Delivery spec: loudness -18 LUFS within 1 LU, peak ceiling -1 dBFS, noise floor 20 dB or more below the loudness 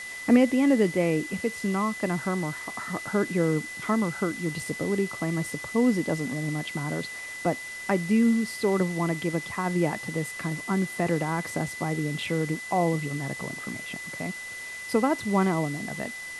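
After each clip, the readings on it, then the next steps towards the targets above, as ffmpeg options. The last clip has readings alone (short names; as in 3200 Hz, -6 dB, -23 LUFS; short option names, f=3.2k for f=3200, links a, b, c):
steady tone 2000 Hz; tone level -36 dBFS; noise floor -38 dBFS; noise floor target -48 dBFS; loudness -27.5 LUFS; peak -9.0 dBFS; loudness target -18.0 LUFS
-> -af "bandreject=f=2k:w=30"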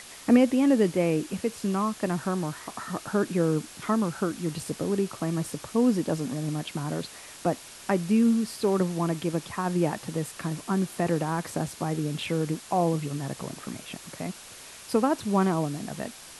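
steady tone none; noise floor -46 dBFS; noise floor target -48 dBFS
-> -af "afftdn=nr=6:nf=-46"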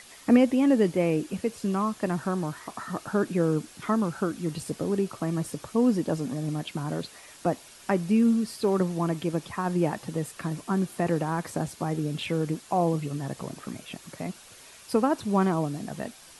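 noise floor -50 dBFS; loudness -27.5 LUFS; peak -9.0 dBFS; loudness target -18.0 LUFS
-> -af "volume=9.5dB,alimiter=limit=-1dB:level=0:latency=1"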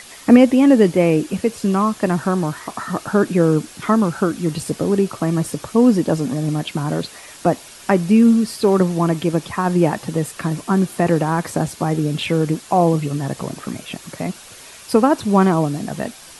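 loudness -18.0 LUFS; peak -1.0 dBFS; noise floor -41 dBFS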